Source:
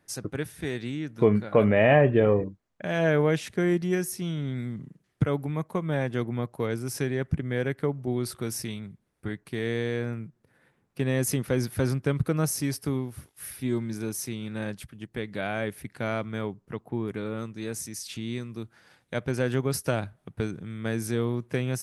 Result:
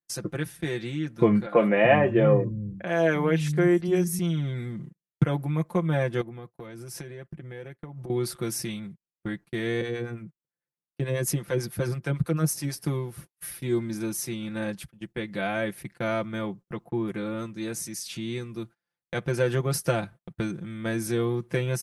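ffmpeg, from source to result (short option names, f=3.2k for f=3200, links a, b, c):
-filter_complex "[0:a]asettb=1/sr,asplit=3[a][b][c];[a]atrim=end=1.464[d];[b]atrim=start=1.46:end=4.19,asetpts=PTS-STARTPTS,afade=t=in:d=0.004:c=qsin,afade=t=out:st=2.726:d=0.004:c=qsin,acrossover=split=180|4100[e][f][g];[g]adelay=30[h];[e]adelay=300[i];[i][f][h]amix=inputs=3:normalize=0,atrim=end_sample=120393[j];[c]atrim=start=4.186[k];[d][j]acrossfade=d=0.004:c1=hsin:c2=qsin[l];[l][k]acrossfade=d=0.004:c1=qsin:c2=hsin,asettb=1/sr,asplit=3[m][n][o];[m]atrim=end=6.214[p];[n]atrim=start=6.21:end=8.1,asetpts=PTS-STARTPTS,afade=t=in:d=0.004:c=qsin,afade=t=out:st=1.886:d=0.004:c=qsin,acompressor=threshold=-36dB:ratio=12:attack=3.2:release=140:knee=1:detection=peak[q];[o]atrim=start=8.096[r];[p][q]acrossfade=d=0.004:c1=hsin:c2=qsin[s];[s][r]acrossfade=d=0.004:c1=qsin:c2=hsin,asettb=1/sr,asplit=3[t][u][v];[t]atrim=end=9.814[w];[u]atrim=start=9.81:end=12.77,asetpts=PTS-STARTPTS,afade=t=in:d=0.004:c=qsin,afade=t=out:st=2.956:d=0.004:c=qsin,acrossover=split=610[x][y];[x]aeval=exprs='val(0)*(1-0.7/2+0.7/2*cos(2*PI*9.1*n/s))':c=same[z];[y]aeval=exprs='val(0)*(1-0.7/2-0.7/2*cos(2*PI*9.1*n/s))':c=same[aa];[z][aa]amix=inputs=2:normalize=0[ab];[v]atrim=start=12.766[ac];[w][ab]acrossfade=d=0.004:c1=hsin:c2=qsin[ad];[ad][ac]acrossfade=d=0.004:c1=qsin:c2=hsin,agate=range=-33dB:threshold=-43dB:ratio=16:detection=peak,aecho=1:1:5.8:0.74"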